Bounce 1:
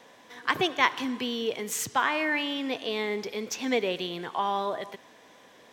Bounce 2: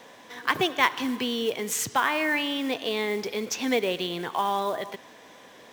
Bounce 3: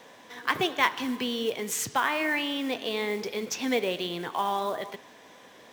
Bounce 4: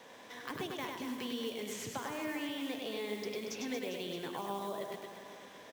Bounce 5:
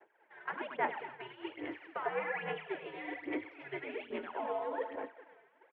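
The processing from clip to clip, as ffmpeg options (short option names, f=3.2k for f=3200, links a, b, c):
-filter_complex "[0:a]asplit=2[a][b];[b]acompressor=threshold=-33dB:ratio=10,volume=-3dB[c];[a][c]amix=inputs=2:normalize=0,acrusher=bits=5:mode=log:mix=0:aa=0.000001"
-af "flanger=delay=5.8:depth=7:regen=-84:speed=1.2:shape=triangular,volume=2.5dB"
-filter_complex "[0:a]acrossover=split=570|5200[a][b][c];[a]acompressor=threshold=-37dB:ratio=4[d];[b]acompressor=threshold=-43dB:ratio=4[e];[c]acompressor=threshold=-49dB:ratio=4[f];[d][e][f]amix=inputs=3:normalize=0,asplit=2[g][h];[h]aecho=0:1:100|230|399|618.7|904.3:0.631|0.398|0.251|0.158|0.1[i];[g][i]amix=inputs=2:normalize=0,volume=-4dB"
-af "aphaser=in_gain=1:out_gain=1:delay=3.7:decay=0.68:speed=1.2:type=sinusoidal,highpass=f=530:t=q:w=0.5412,highpass=f=530:t=q:w=1.307,lowpass=f=2.5k:t=q:w=0.5176,lowpass=f=2.5k:t=q:w=0.7071,lowpass=f=2.5k:t=q:w=1.932,afreqshift=-120,agate=range=-33dB:threshold=-41dB:ratio=3:detection=peak,volume=3dB"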